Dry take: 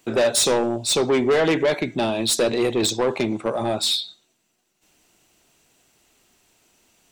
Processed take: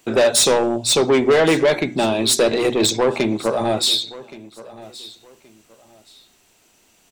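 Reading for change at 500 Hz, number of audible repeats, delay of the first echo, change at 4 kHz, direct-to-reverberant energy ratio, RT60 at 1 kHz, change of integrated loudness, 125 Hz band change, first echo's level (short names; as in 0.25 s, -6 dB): +4.0 dB, 2, 1.123 s, +4.0 dB, none, none, +4.0 dB, +2.5 dB, -19.0 dB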